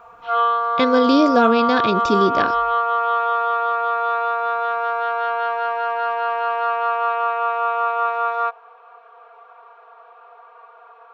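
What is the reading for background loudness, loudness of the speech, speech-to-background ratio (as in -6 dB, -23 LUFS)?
-20.5 LUFS, -18.5 LUFS, 2.0 dB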